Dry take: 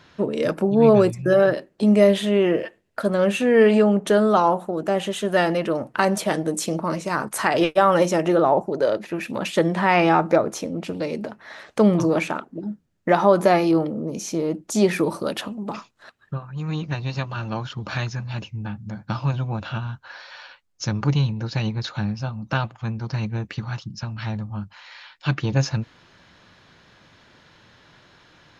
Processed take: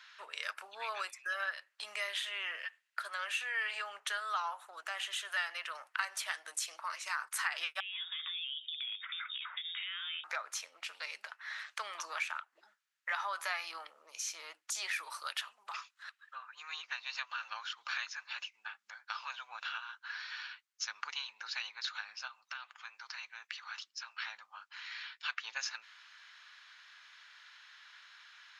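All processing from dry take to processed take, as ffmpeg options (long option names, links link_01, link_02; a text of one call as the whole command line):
ffmpeg -i in.wav -filter_complex "[0:a]asettb=1/sr,asplit=3[link_01][link_02][link_03];[link_01]atrim=end=7.804[link_04];[link_02]atrim=start=7.8:end=10.24,asetpts=PTS-STARTPTS,afade=type=in:duration=0.004:curve=qsin,afade=type=out:start_time=2.436:duration=0.004:curve=qsin,highpass=frequency=850:poles=1,acompressor=threshold=-34dB:ratio=8:attack=3.2:release=140:knee=1:detection=peak,lowpass=frequency=3300:width_type=q:width=0.5098,lowpass=frequency=3300:width_type=q:width=0.6013,lowpass=frequency=3300:width_type=q:width=0.9,lowpass=frequency=3300:width_type=q:width=2.563,afreqshift=-3900[link_05];[link_03]atrim=start=10.236[link_06];[link_04][link_05]acrossfade=duration=0.004:curve1=hsin:curve2=qsin[link_07];[link_07][link_06]acrossfade=duration=0.004:curve1=qsin:curve2=hsin,asettb=1/sr,asplit=3[link_08][link_09][link_10];[link_08]atrim=end=22.274[link_11];[link_09]atrim=start=22.27:end=24.17,asetpts=PTS-STARTPTS,afade=type=in:duration=0.004:curve=qsin,afade=type=out:start_time=1.896:duration=0.004:curve=qsin,highpass=frequency=500:poles=1,acompressor=threshold=-34dB:ratio=8:attack=3.2:release=140:knee=1:detection=peak[link_12];[link_10]atrim=start=24.166[link_13];[link_11][link_12]acrossfade=duration=0.004:curve1=hsin:curve2=qsin[link_14];[link_14][link_13]acrossfade=duration=0.004:curve1=qsin:curve2=hsin,highpass=frequency=1300:width=0.5412,highpass=frequency=1300:width=1.3066,highshelf=frequency=6300:gain=-6,acompressor=threshold=-38dB:ratio=2" out.wav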